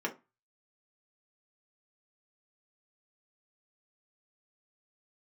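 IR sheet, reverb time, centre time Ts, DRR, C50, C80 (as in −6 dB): 0.25 s, 12 ms, −0.5 dB, 15.0 dB, 23.0 dB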